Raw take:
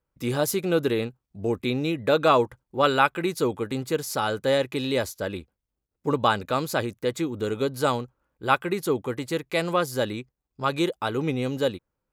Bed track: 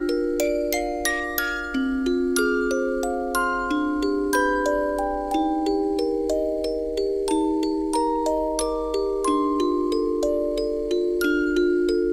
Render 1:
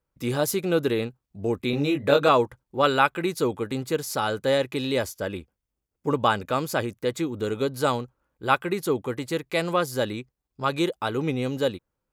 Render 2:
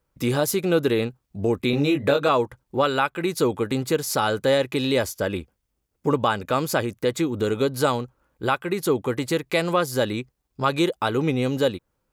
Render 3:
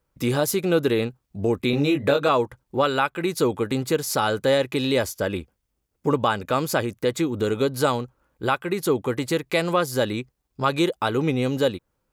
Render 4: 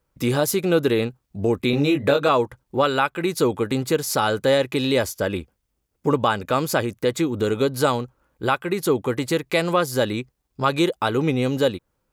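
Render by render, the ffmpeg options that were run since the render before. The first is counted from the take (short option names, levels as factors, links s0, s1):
-filter_complex "[0:a]asettb=1/sr,asplit=3[s0][s1][s2];[s0]atrim=end=1.714[s3];[s1]atrim=start=1.71:end=2.29,asetpts=PTS-STARTPTS,afade=t=in:d=0.004:c=qsin,afade=t=out:st=0.576:d=0.004:c=qsin,asplit=2[s4][s5];[s5]adelay=21,volume=0.708[s6];[s4][s6]amix=inputs=2:normalize=0,atrim=end_sample=25578[s7];[s2]atrim=start=2.286[s8];[s3][s7]acrossfade=d=0.004:c1=hsin:c2=qsin[s9];[s9][s8]acrossfade=d=0.004:c1=qsin:c2=hsin,asettb=1/sr,asplit=3[s10][s11][s12];[s10]atrim=end=4.994[s13];[s11]atrim=start=4.99:end=6.98,asetpts=PTS-STARTPTS,afade=t=in:d=0.004:c=qsin,afade=t=out:st=1.986:d=0.004:c=qsin,bandreject=f=4000:w=8.5[s14];[s12]atrim=start=6.976[s15];[s13][s14]acrossfade=d=0.004:c1=hsin:c2=qsin[s16];[s16][s15]acrossfade=d=0.004:c1=qsin:c2=hsin"
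-filter_complex "[0:a]asplit=2[s0][s1];[s1]acompressor=threshold=0.0282:ratio=6,volume=1.33[s2];[s0][s2]amix=inputs=2:normalize=0,alimiter=limit=0.376:level=0:latency=1:release=379"
-af anull
-af "volume=1.19"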